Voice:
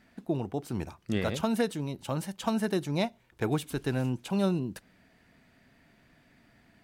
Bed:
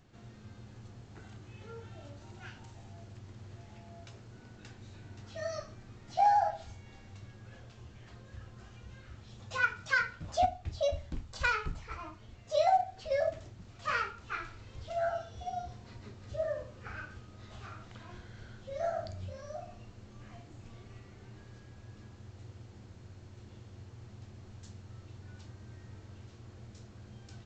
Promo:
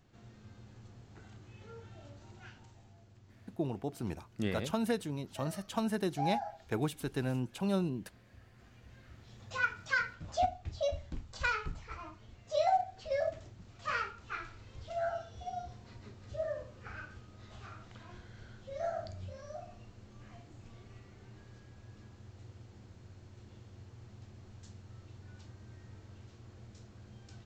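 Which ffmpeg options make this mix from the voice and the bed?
-filter_complex "[0:a]adelay=3300,volume=-4.5dB[a];[1:a]volume=4.5dB,afade=t=out:st=2.3:d=0.72:silence=0.446684,afade=t=in:st=8.49:d=1.08:silence=0.398107[b];[a][b]amix=inputs=2:normalize=0"

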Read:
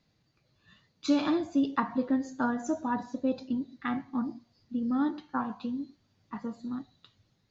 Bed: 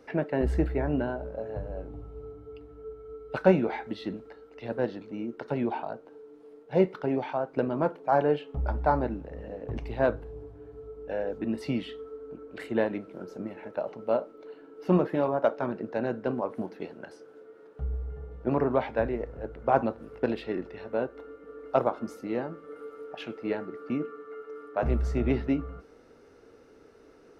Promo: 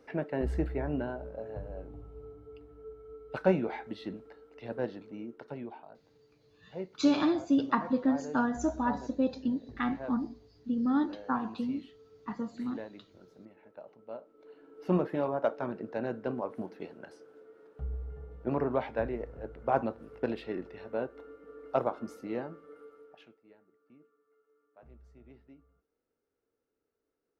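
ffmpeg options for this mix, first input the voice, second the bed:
-filter_complex "[0:a]adelay=5950,volume=0.5dB[a];[1:a]volume=7dB,afade=t=out:st=4.99:d=0.8:silence=0.266073,afade=t=in:st=14.22:d=0.56:silence=0.251189,afade=t=out:st=22.35:d=1.05:silence=0.0562341[b];[a][b]amix=inputs=2:normalize=0"

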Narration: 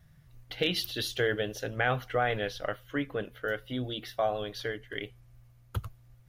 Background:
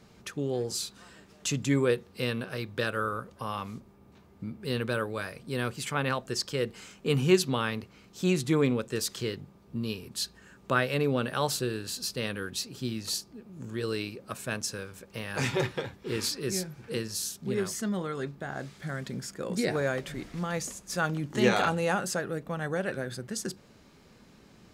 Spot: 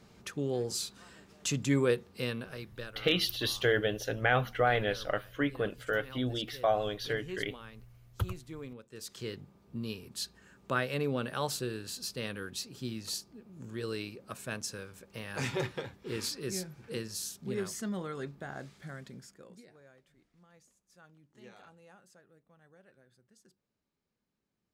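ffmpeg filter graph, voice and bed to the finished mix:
-filter_complex "[0:a]adelay=2450,volume=1dB[a];[1:a]volume=12.5dB,afade=t=out:st=2.03:d=0.96:silence=0.133352,afade=t=in:st=8.91:d=0.46:silence=0.188365,afade=t=out:st=18.45:d=1.2:silence=0.0562341[b];[a][b]amix=inputs=2:normalize=0"

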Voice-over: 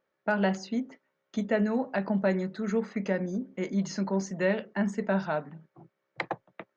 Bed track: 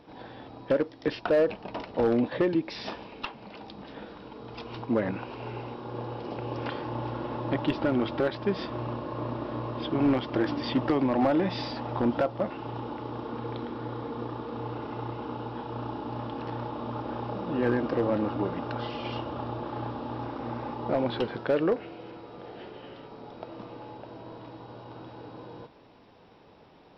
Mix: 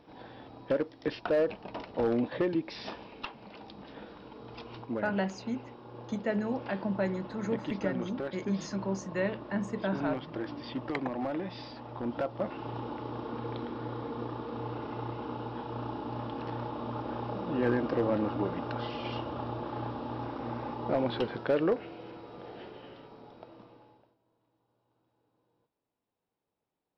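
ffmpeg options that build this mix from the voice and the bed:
-filter_complex "[0:a]adelay=4750,volume=-4.5dB[a];[1:a]volume=4dB,afade=t=out:st=4.55:d=0.48:silence=0.501187,afade=t=in:st=12.01:d=0.59:silence=0.398107,afade=t=out:st=22.54:d=1.62:silence=0.0316228[b];[a][b]amix=inputs=2:normalize=0"

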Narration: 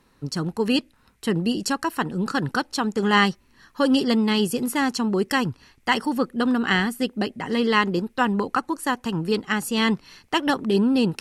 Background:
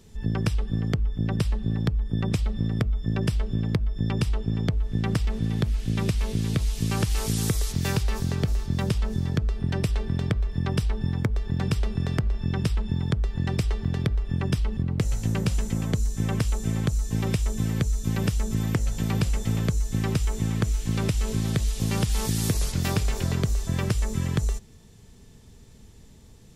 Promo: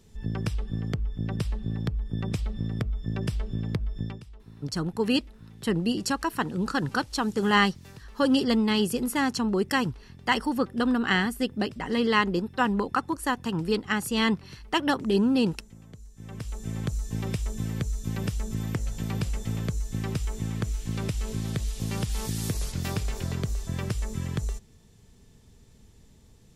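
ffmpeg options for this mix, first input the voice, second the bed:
-filter_complex "[0:a]adelay=4400,volume=-3dB[a];[1:a]volume=12.5dB,afade=t=out:st=3.99:d=0.22:silence=0.133352,afade=t=in:st=16.15:d=0.72:silence=0.141254[b];[a][b]amix=inputs=2:normalize=0"

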